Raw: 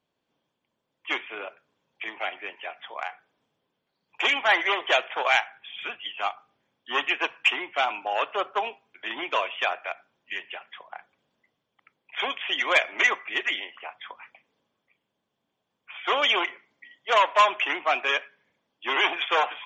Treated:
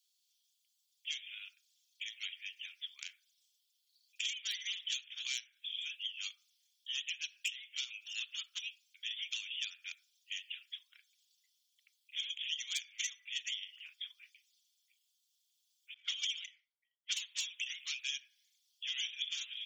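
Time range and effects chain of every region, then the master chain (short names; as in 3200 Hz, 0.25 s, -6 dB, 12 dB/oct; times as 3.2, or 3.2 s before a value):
15.94–17.21 low-pass opened by the level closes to 430 Hz, open at -22.5 dBFS + transient shaper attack +7 dB, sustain -3 dB
whole clip: inverse Chebyshev high-pass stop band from 780 Hz, stop band 80 dB; compressor 4:1, threshold -52 dBFS; gain +14.5 dB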